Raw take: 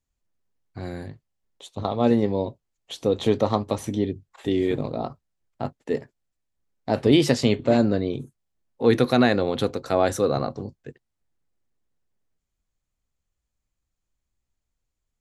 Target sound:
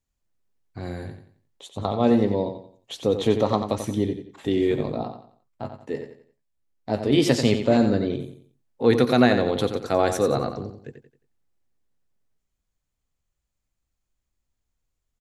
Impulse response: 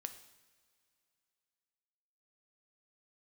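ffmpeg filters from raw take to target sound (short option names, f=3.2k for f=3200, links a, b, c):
-filter_complex "[0:a]asettb=1/sr,asplit=3[a][b][c];[a]atrim=end=5.034[d];[b]atrim=start=5.03:end=7.18,asetpts=PTS-STARTPTS,afade=t=in:d=0.004:c=qsin,afade=t=out:st=2.146:d=0.004:c=qsin,flanger=delay=9.3:depth=5.5:regen=48:speed=1.6:shape=sinusoidal[e];[c]atrim=start=7.176[f];[d][e]acrossfade=d=0.004:c1=hsin:c2=qsin[g];[g][f]acrossfade=d=0.004:c1=qsin:c2=hsin,aecho=1:1:89|178|267|356:0.376|0.128|0.0434|0.0148"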